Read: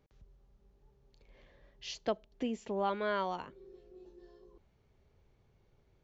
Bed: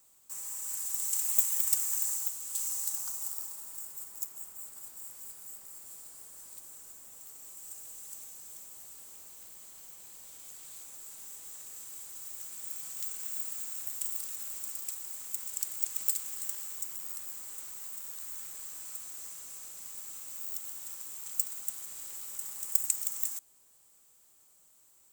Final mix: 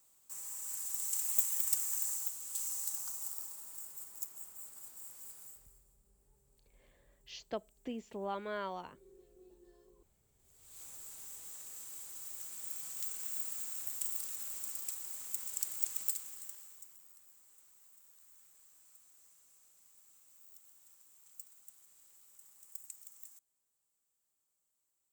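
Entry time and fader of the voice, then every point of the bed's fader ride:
5.45 s, -6.0 dB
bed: 5.44 s -4.5 dB
5.98 s -28.5 dB
10.34 s -28.5 dB
10.83 s -2.5 dB
15.89 s -2.5 dB
17.12 s -20 dB

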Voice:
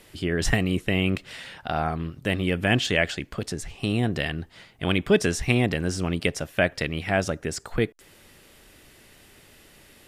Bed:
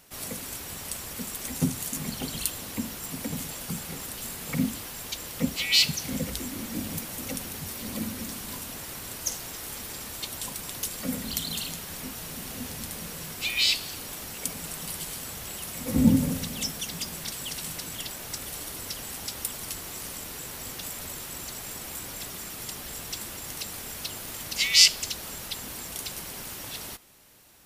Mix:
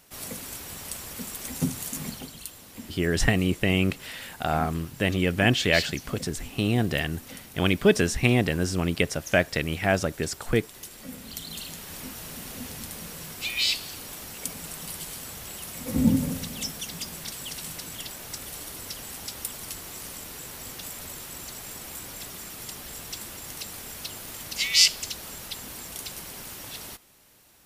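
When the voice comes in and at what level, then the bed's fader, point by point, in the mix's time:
2.75 s, +0.5 dB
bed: 2.07 s -1 dB
2.35 s -10 dB
11.07 s -10 dB
11.96 s -1.5 dB

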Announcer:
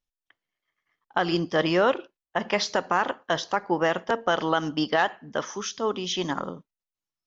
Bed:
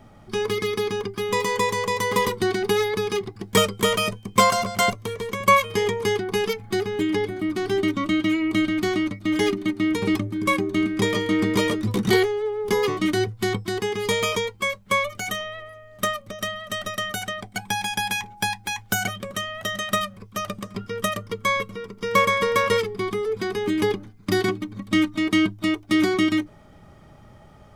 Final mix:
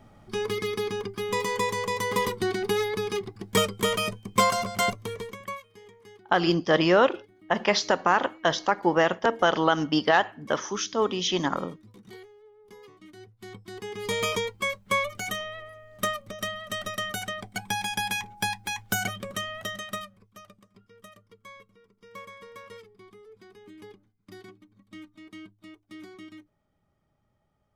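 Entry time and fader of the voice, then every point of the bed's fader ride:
5.15 s, +2.0 dB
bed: 5.19 s -4.5 dB
5.67 s -28 dB
13.08 s -28 dB
14.24 s -3.5 dB
19.54 s -3.5 dB
20.66 s -25 dB

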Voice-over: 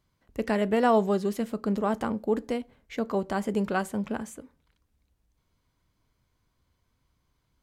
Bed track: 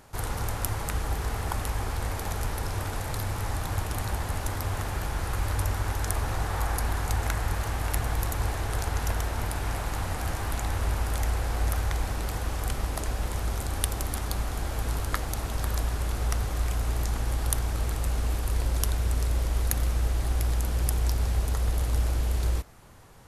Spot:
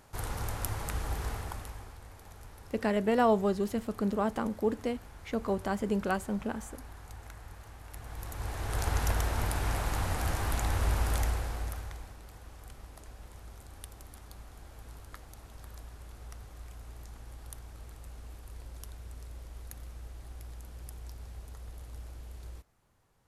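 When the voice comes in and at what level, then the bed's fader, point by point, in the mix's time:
2.35 s, -3.0 dB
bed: 1.29 s -5 dB
2.01 s -19.5 dB
7.86 s -19.5 dB
8.88 s -1 dB
11.17 s -1 dB
12.18 s -19 dB

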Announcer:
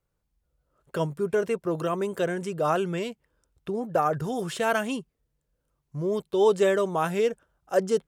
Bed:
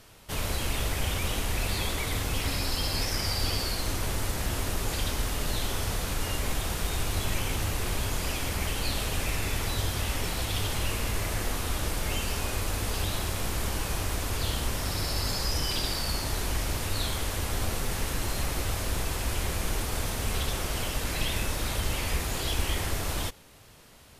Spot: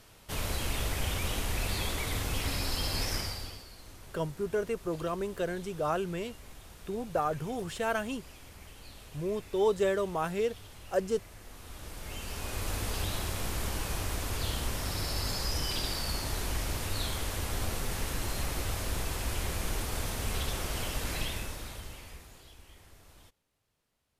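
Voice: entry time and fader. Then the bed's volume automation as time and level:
3.20 s, -6.0 dB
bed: 3.16 s -3 dB
3.66 s -20 dB
11.40 s -20 dB
12.70 s -3.5 dB
21.15 s -3.5 dB
22.59 s -26 dB

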